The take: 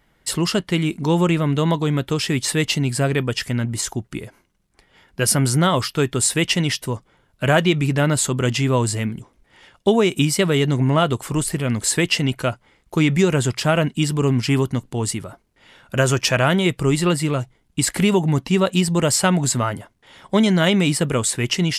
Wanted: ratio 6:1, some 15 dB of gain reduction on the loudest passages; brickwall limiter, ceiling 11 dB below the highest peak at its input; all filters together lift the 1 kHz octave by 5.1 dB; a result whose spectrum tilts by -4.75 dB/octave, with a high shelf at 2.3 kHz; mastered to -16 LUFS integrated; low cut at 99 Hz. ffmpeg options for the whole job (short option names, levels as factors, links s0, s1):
-af "highpass=99,equalizer=f=1000:t=o:g=7.5,highshelf=f=2300:g=-4.5,acompressor=threshold=0.0447:ratio=6,volume=7.94,alimiter=limit=0.531:level=0:latency=1"